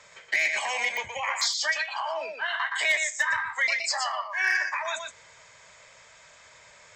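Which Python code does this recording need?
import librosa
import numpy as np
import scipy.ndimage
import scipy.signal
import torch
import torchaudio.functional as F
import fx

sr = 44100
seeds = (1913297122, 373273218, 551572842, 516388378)

y = fx.fix_declip(x, sr, threshold_db=-16.0)
y = fx.fix_declick_ar(y, sr, threshold=10.0)
y = fx.fix_echo_inverse(y, sr, delay_ms=120, level_db=-5.5)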